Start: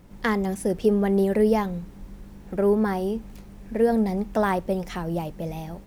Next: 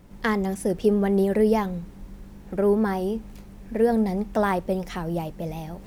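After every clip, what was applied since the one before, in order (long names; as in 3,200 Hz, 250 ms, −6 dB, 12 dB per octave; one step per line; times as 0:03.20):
reversed playback
upward compression, threshold −40 dBFS
reversed playback
pitch vibrato 6.5 Hz 30 cents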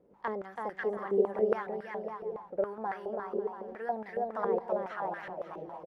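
on a send: bouncing-ball delay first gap 330 ms, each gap 0.65×, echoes 5
on the sum: band-pass on a step sequencer 7.2 Hz 460–1,700 Hz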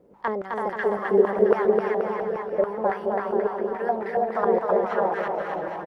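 bouncing-ball delay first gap 260 ms, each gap 0.85×, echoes 5
level +8 dB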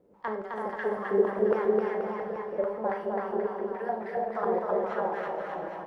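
four-comb reverb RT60 0.48 s, combs from 29 ms, DRR 6 dB
level −7 dB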